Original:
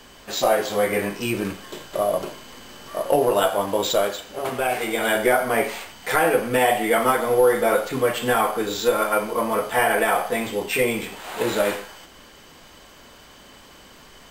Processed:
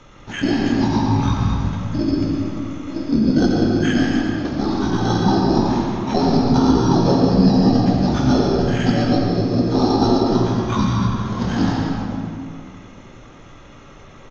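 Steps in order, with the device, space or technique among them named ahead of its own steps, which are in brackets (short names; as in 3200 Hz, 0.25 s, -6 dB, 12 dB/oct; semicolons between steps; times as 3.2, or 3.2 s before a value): monster voice (pitch shift -11 st; formant shift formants -3.5 st; low shelf 110 Hz +7 dB; echo 85 ms -9.5 dB; reverb RT60 2.4 s, pre-delay 0.102 s, DRR -0.5 dB)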